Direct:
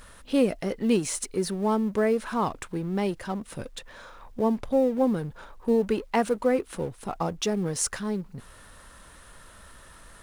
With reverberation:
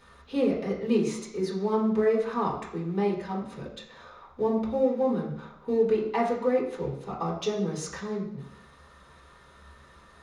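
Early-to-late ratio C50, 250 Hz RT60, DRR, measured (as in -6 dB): 5.0 dB, 0.80 s, -6.5 dB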